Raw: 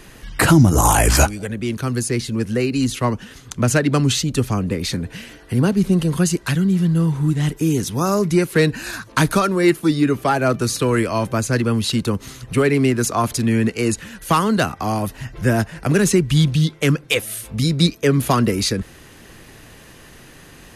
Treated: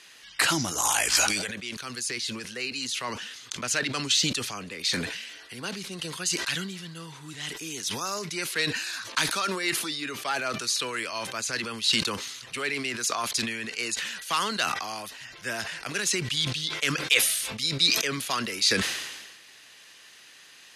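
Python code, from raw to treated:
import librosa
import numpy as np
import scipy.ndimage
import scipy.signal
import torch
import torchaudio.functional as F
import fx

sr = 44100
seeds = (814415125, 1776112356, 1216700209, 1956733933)

y = fx.bandpass_q(x, sr, hz=4100.0, q=0.92)
y = fx.sustainer(y, sr, db_per_s=43.0)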